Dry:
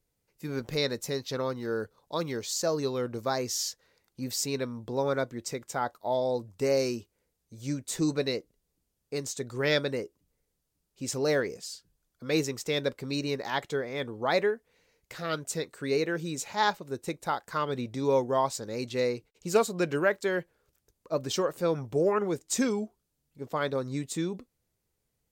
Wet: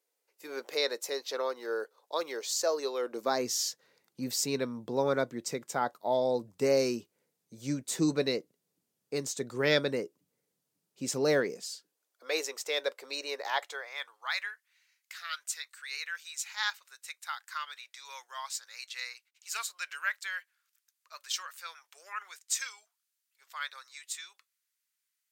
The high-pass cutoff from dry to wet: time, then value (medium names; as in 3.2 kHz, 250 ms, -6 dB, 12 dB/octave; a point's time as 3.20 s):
high-pass 24 dB/octave
2.99 s 410 Hz
3.51 s 140 Hz
11.40 s 140 Hz
12.24 s 500 Hz
13.46 s 500 Hz
14.37 s 1.4 kHz